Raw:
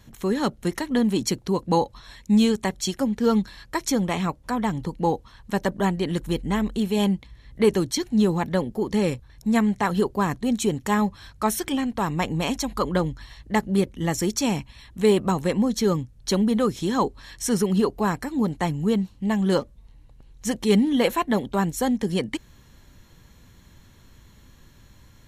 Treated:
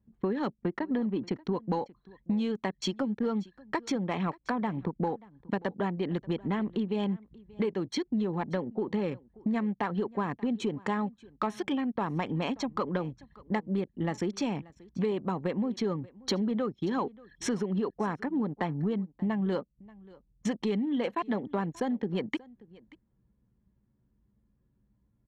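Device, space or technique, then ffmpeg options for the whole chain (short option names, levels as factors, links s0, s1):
AM radio: -filter_complex "[0:a]asettb=1/sr,asplit=3[s0][s1][s2];[s0]atrim=end=0.474[s3];[s1]atrim=start=0.47:end=1.36,asetpts=PTS-STARTPTS,afade=t=in:d=0.004:c=qsin,afade=t=out:st=0.886:d=0.004:c=qsin,aemphasis=mode=reproduction:type=75fm[s4];[s2]atrim=start=1.356[s5];[s3][s4]acrossfade=d=0.004:c1=hsin:c2=qsin[s6];[s6][s5]acrossfade=d=0.004:c1=qsin:c2=hsin,anlmdn=15.8,highpass=160,lowpass=3500,highshelf=f=4400:g=-5,acompressor=threshold=0.02:ratio=8,asoftclip=type=tanh:threshold=0.0596,aecho=1:1:583:0.075,volume=2.24"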